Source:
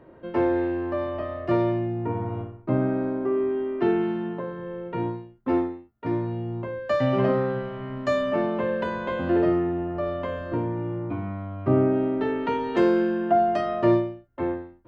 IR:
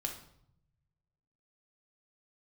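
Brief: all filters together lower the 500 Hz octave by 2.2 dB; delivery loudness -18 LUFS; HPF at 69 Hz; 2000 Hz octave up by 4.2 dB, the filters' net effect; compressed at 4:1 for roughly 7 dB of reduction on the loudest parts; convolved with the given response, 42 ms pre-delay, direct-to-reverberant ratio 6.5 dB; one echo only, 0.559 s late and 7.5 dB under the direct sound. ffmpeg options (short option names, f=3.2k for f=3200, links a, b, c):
-filter_complex "[0:a]highpass=69,equalizer=f=500:t=o:g=-3.5,equalizer=f=2k:t=o:g=5.5,acompressor=threshold=-25dB:ratio=4,aecho=1:1:559:0.422,asplit=2[a][b];[1:a]atrim=start_sample=2205,adelay=42[c];[b][c]afir=irnorm=-1:irlink=0,volume=-7dB[d];[a][d]amix=inputs=2:normalize=0,volume=11dB"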